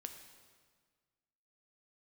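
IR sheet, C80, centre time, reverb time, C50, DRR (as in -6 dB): 9.0 dB, 27 ms, 1.6 s, 7.5 dB, 5.5 dB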